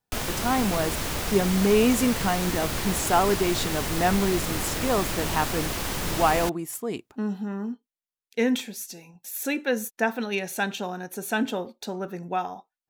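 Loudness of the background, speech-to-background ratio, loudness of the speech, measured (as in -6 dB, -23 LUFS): -29.0 LUFS, 2.0 dB, -27.0 LUFS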